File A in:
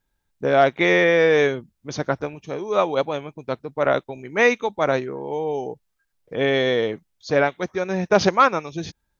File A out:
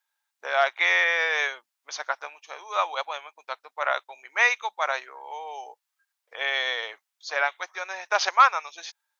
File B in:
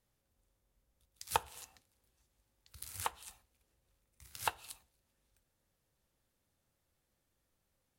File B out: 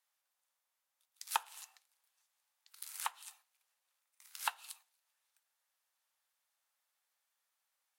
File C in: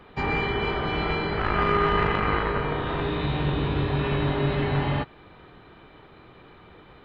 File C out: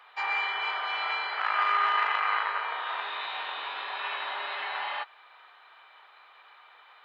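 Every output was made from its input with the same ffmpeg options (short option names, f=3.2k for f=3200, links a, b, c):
-af "highpass=f=820:w=0.5412,highpass=f=820:w=1.3066"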